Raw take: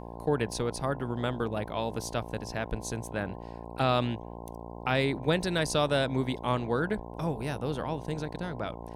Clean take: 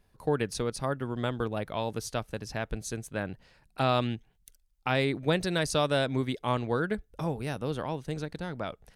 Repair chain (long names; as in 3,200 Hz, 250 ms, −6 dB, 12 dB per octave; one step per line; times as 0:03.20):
hum removal 57.9 Hz, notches 18